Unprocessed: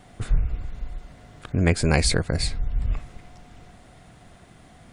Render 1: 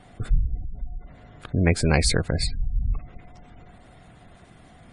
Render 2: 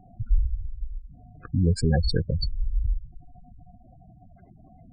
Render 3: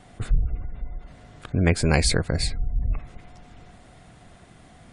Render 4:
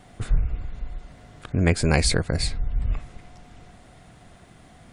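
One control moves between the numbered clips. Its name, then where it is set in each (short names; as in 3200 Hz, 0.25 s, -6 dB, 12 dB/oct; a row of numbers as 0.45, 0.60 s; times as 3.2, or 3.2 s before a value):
spectral gate, under each frame's peak: -30, -10, -40, -55 dB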